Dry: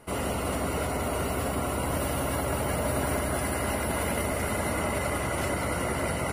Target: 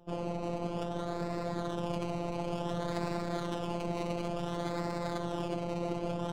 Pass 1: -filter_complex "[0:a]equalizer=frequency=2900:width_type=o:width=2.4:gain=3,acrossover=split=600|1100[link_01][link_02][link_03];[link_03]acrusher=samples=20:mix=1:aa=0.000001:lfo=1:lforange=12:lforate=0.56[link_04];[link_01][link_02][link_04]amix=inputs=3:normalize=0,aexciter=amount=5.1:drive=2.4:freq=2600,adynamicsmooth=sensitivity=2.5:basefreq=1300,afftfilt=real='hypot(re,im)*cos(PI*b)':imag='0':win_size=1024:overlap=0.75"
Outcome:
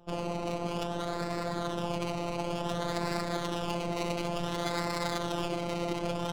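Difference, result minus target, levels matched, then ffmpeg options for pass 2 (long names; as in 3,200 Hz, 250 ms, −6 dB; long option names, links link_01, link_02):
4,000 Hz band +5.5 dB
-filter_complex "[0:a]equalizer=frequency=2900:width_type=o:width=2.4:gain=-7,acrossover=split=600|1100[link_01][link_02][link_03];[link_03]acrusher=samples=20:mix=1:aa=0.000001:lfo=1:lforange=12:lforate=0.56[link_04];[link_01][link_02][link_04]amix=inputs=3:normalize=0,aexciter=amount=5.1:drive=2.4:freq=2600,adynamicsmooth=sensitivity=2.5:basefreq=1300,afftfilt=real='hypot(re,im)*cos(PI*b)':imag='0':win_size=1024:overlap=0.75"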